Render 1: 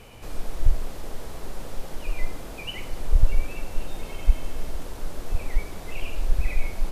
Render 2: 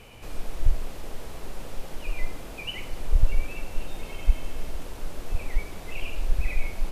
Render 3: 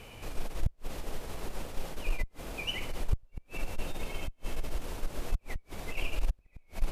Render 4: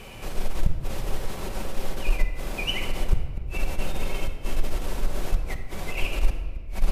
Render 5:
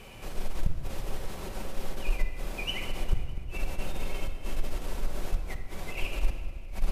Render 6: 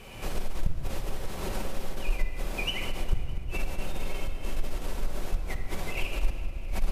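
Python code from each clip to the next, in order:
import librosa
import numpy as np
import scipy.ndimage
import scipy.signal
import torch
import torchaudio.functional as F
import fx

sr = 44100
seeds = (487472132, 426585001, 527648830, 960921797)

y1 = fx.peak_eq(x, sr, hz=2600.0, db=3.5, octaves=0.64)
y1 = y1 * librosa.db_to_amplitude(-2.0)
y2 = fx.gate_flip(y1, sr, shuts_db=-13.0, range_db=-39)
y2 = fx.tube_stage(y2, sr, drive_db=19.0, bias=0.45)
y2 = y2 * librosa.db_to_amplitude(1.5)
y3 = fx.room_shoebox(y2, sr, seeds[0], volume_m3=1900.0, walls='mixed', distance_m=1.1)
y3 = y3 * librosa.db_to_amplitude(6.0)
y4 = fx.echo_feedback(y3, sr, ms=201, feedback_pct=58, wet_db=-15.5)
y4 = y4 * librosa.db_to_amplitude(-5.5)
y5 = fx.recorder_agc(y4, sr, target_db=-20.5, rise_db_per_s=25.0, max_gain_db=30)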